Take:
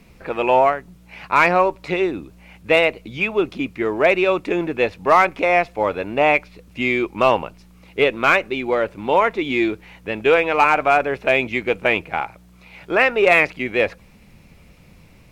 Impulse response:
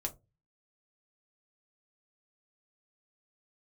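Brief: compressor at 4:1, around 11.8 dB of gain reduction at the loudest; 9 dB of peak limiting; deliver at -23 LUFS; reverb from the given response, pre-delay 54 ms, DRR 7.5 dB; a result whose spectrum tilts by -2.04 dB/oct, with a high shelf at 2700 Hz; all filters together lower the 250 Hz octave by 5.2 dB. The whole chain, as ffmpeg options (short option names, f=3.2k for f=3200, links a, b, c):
-filter_complex "[0:a]equalizer=f=250:t=o:g=-8.5,highshelf=f=2.7k:g=6.5,acompressor=threshold=-24dB:ratio=4,alimiter=limit=-17.5dB:level=0:latency=1,asplit=2[a][b];[1:a]atrim=start_sample=2205,adelay=54[c];[b][c]afir=irnorm=-1:irlink=0,volume=-8dB[d];[a][d]amix=inputs=2:normalize=0,volume=6dB"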